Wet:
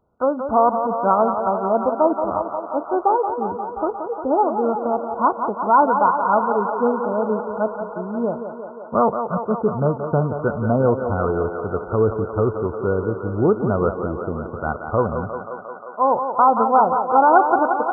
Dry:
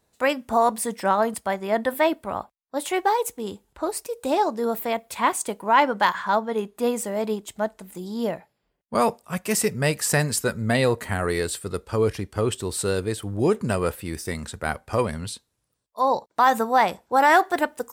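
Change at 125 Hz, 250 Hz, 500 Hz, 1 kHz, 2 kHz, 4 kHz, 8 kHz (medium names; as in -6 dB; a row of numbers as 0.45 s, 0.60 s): +3.5 dB, +4.0 dB, +4.5 dB, +5.0 dB, -4.5 dB, under -40 dB, under -40 dB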